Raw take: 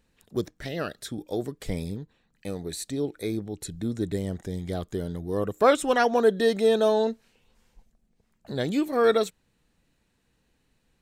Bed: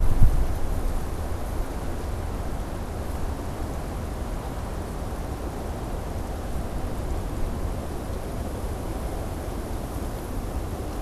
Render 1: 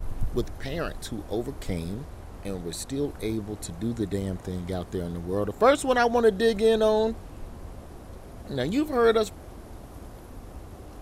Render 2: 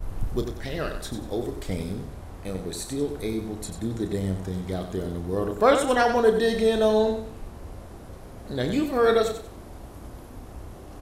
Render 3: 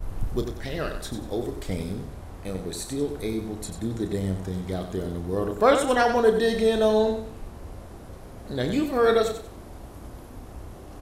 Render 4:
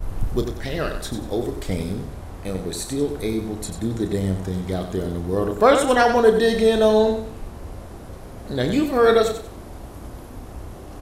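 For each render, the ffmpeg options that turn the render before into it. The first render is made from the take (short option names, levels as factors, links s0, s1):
-filter_complex "[1:a]volume=0.251[s0];[0:a][s0]amix=inputs=2:normalize=0"
-filter_complex "[0:a]asplit=2[s0][s1];[s1]adelay=32,volume=0.355[s2];[s0][s2]amix=inputs=2:normalize=0,aecho=1:1:93|186|279|372:0.398|0.123|0.0383|0.0119"
-af anull
-af "volume=1.68,alimiter=limit=0.794:level=0:latency=1"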